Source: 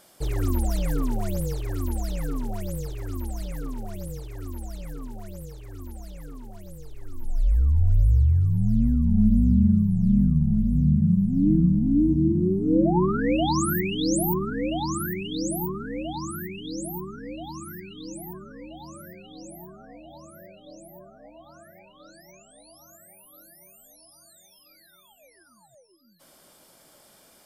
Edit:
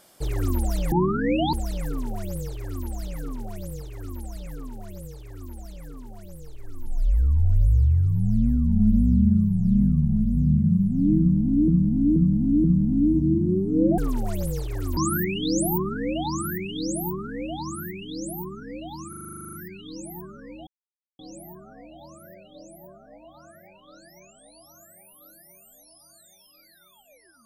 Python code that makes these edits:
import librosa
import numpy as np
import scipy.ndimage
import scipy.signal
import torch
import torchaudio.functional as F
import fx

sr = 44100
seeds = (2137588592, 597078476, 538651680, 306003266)

y = fx.edit(x, sr, fx.swap(start_s=0.92, length_s=0.99, other_s=12.92, other_length_s=0.61),
    fx.repeat(start_s=11.58, length_s=0.48, count=4),
    fx.stutter(start_s=17.65, slice_s=0.04, count=12),
    fx.silence(start_s=18.79, length_s=0.52), tone=tone)